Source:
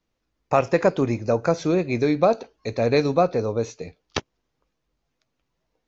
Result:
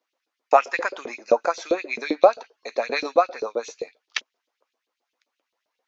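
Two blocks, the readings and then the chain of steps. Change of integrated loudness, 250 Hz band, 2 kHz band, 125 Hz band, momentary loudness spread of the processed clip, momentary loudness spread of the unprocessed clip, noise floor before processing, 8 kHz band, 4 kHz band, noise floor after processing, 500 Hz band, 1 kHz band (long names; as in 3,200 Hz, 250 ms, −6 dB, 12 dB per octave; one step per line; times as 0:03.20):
−0.5 dB, −10.0 dB, +3.5 dB, below −30 dB, 13 LU, 12 LU, −77 dBFS, can't be measured, +1.0 dB, −83 dBFS, −1.0 dB, +3.0 dB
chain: low shelf with overshoot 180 Hz −9.5 dB, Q 3
auto-filter high-pass saw up 7.6 Hz 410–4,000 Hz
level −1 dB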